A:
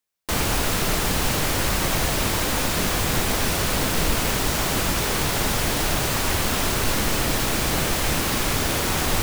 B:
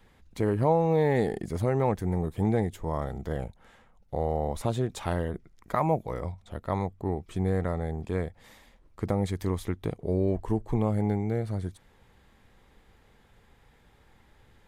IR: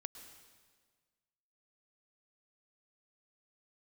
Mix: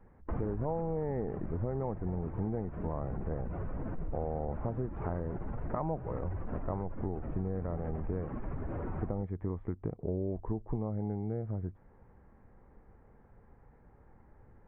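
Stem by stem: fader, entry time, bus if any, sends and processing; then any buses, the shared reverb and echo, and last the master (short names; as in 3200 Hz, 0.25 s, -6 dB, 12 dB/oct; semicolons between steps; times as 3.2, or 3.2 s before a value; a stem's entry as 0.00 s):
-3.0 dB, 0.00 s, no send, spectral contrast raised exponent 1.7; auto duck -8 dB, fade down 1.30 s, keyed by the second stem
+1.5 dB, 0.00 s, no send, dry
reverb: off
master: Gaussian blur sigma 6.1 samples; compressor 4:1, threshold -32 dBFS, peak gain reduction 12 dB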